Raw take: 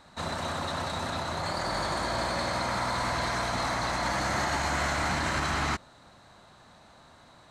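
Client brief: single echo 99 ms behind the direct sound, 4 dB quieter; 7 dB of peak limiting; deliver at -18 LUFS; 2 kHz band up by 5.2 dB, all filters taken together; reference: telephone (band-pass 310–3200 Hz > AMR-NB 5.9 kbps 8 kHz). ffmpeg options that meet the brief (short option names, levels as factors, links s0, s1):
-af "equalizer=f=2000:t=o:g=7,alimiter=limit=0.0841:level=0:latency=1,highpass=310,lowpass=3200,aecho=1:1:99:0.631,volume=6.31" -ar 8000 -c:a libopencore_amrnb -b:a 5900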